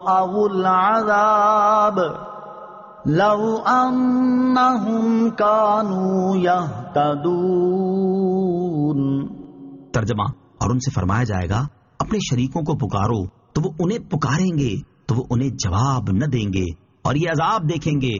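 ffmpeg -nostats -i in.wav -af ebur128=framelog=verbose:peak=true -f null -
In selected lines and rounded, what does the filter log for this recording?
Integrated loudness:
  I:         -19.5 LUFS
  Threshold: -29.8 LUFS
Loudness range:
  LRA:         4.8 LU
  Threshold: -40.1 LUFS
  LRA low:   -22.5 LUFS
  LRA high:  -17.7 LUFS
True peak:
  Peak:       -5.9 dBFS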